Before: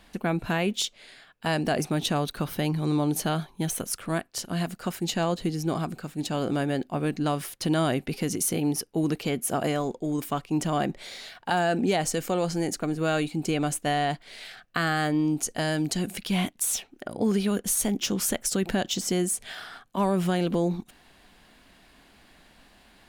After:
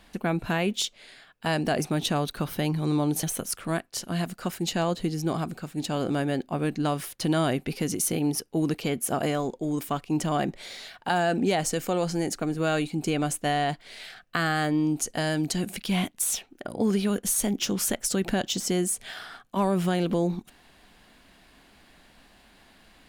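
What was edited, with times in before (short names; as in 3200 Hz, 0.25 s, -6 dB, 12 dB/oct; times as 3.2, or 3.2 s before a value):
3.23–3.64 cut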